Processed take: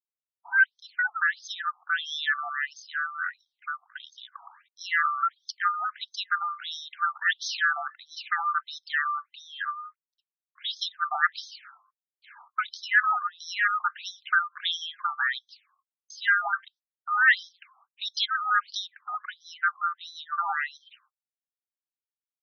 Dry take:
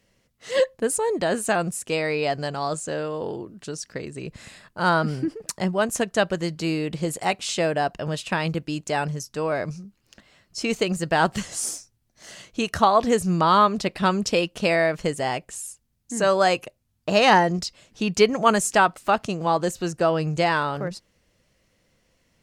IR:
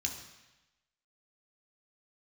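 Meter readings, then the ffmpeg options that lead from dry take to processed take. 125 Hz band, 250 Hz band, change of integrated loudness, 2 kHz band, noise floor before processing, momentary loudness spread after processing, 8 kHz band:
under -40 dB, under -40 dB, -4.5 dB, +3.5 dB, -69 dBFS, 15 LU, -16.0 dB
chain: -af "afftfilt=real='real(if(lt(b,960),b+48*(1-2*mod(floor(b/48),2)),b),0)':imag='imag(if(lt(b,960),b+48*(1-2*mod(floor(b/48),2)),b),0)':win_size=2048:overlap=0.75,asubboost=boost=3.5:cutoff=56,agate=range=-58dB:threshold=-47dB:ratio=16:detection=peak,afftfilt=real='re*between(b*sr/1024,930*pow(4600/930,0.5+0.5*sin(2*PI*1.5*pts/sr))/1.41,930*pow(4600/930,0.5+0.5*sin(2*PI*1.5*pts/sr))*1.41)':imag='im*between(b*sr/1024,930*pow(4600/930,0.5+0.5*sin(2*PI*1.5*pts/sr))/1.41,930*pow(4600/930,0.5+0.5*sin(2*PI*1.5*pts/sr))*1.41)':win_size=1024:overlap=0.75"

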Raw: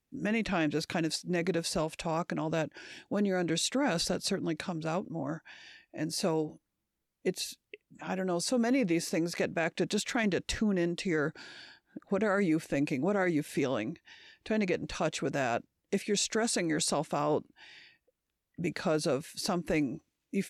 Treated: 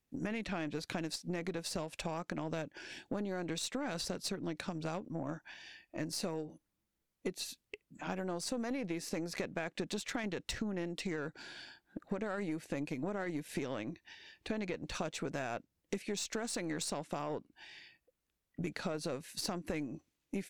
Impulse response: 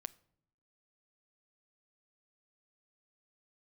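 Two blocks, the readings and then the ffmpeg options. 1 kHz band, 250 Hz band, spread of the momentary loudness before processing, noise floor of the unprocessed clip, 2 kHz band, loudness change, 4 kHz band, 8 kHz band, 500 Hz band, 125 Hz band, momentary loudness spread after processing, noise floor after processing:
-7.5 dB, -8.0 dB, 10 LU, -84 dBFS, -7.5 dB, -8.0 dB, -6.5 dB, -7.0 dB, -8.5 dB, -7.0 dB, 11 LU, -85 dBFS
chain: -af "acompressor=threshold=-36dB:ratio=6,aeval=exprs='0.0891*(cos(1*acos(clip(val(0)/0.0891,-1,1)))-cos(1*PI/2))+0.00355*(cos(7*acos(clip(val(0)/0.0891,-1,1)))-cos(7*PI/2))+0.00224*(cos(8*acos(clip(val(0)/0.0891,-1,1)))-cos(8*PI/2))':c=same,volume=2dB"

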